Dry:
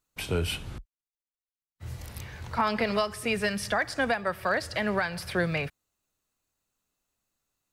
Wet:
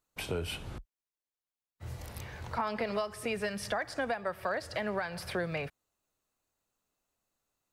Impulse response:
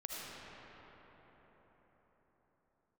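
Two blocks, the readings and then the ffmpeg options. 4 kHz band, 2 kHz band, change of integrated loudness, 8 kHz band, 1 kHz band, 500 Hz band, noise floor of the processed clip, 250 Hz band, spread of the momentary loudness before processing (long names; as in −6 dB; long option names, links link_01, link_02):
−7.0 dB, −8.0 dB, −7.0 dB, −6.0 dB, −6.0 dB, −4.5 dB, below −85 dBFS, −7.5 dB, 14 LU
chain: -af "equalizer=frequency=630:width=0.65:gain=5.5,acompressor=threshold=-31dB:ratio=2,volume=-3.5dB"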